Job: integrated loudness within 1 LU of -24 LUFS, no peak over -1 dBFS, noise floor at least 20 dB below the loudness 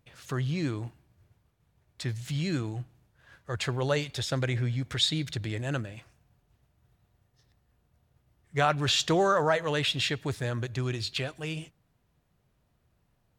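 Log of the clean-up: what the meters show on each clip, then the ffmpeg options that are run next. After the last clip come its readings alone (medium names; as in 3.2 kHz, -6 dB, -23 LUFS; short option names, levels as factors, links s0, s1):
loudness -29.5 LUFS; peak level -10.5 dBFS; loudness target -24.0 LUFS
-> -af "volume=1.88"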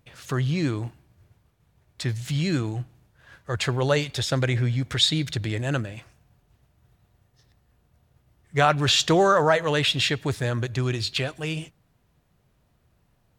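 loudness -24.0 LUFS; peak level -5.0 dBFS; noise floor -67 dBFS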